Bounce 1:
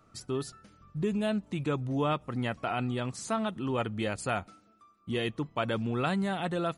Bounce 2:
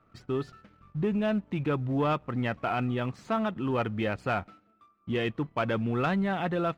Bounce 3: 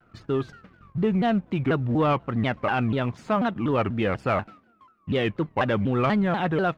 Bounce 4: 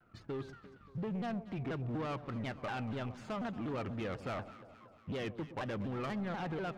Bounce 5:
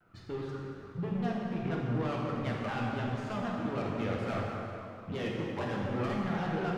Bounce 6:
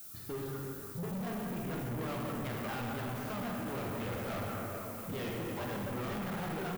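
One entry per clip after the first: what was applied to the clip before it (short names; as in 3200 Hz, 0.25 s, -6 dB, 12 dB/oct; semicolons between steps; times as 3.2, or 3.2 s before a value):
Chebyshev low-pass 2300 Hz, order 2; sample leveller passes 1
high shelf 5200 Hz -6 dB; shaped vibrato saw down 4.1 Hz, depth 250 cents; gain +5 dB
compressor, threshold -23 dBFS, peak gain reduction 5 dB; soft clip -26 dBFS, distortion -13 dB; echo with dull and thin repeats by turns 0.116 s, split 920 Hz, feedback 76%, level -13 dB; gain -8 dB
plate-style reverb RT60 2.8 s, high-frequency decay 0.65×, DRR -3.5 dB
added noise violet -49 dBFS; hard clip -35.5 dBFS, distortion -8 dB; echo 0.97 s -11.5 dB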